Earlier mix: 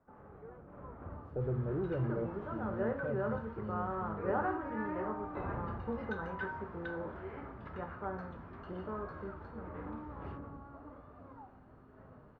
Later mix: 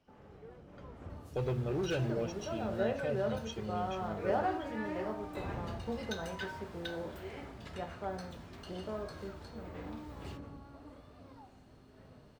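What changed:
speech: remove moving average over 43 samples
second sound: add parametric band 670 Hz +13 dB 0.29 octaves
master: remove low-pass with resonance 1,300 Hz, resonance Q 1.9

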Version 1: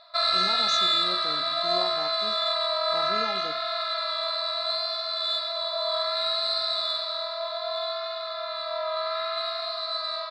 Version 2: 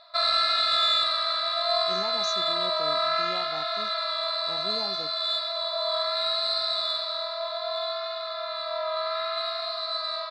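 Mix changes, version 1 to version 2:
speech: entry +1.55 s
reverb: off

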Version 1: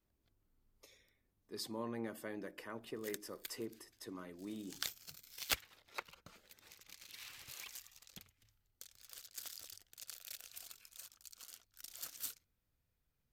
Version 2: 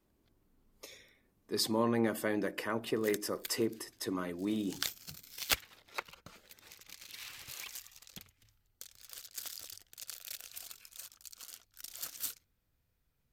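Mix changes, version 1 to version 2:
speech +12.0 dB
background +5.0 dB

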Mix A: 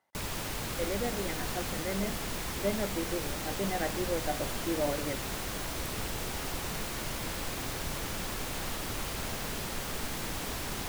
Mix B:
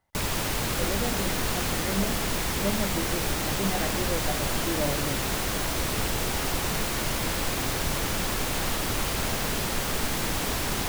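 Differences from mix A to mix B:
speech: remove high-pass filter 260 Hz
background +8.0 dB

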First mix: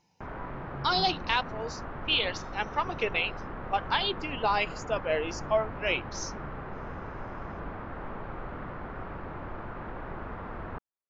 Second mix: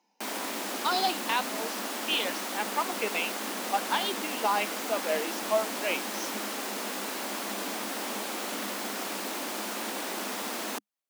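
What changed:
background: remove transistor ladder low-pass 1,700 Hz, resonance 30%
master: add Chebyshev high-pass with heavy ripple 200 Hz, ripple 3 dB

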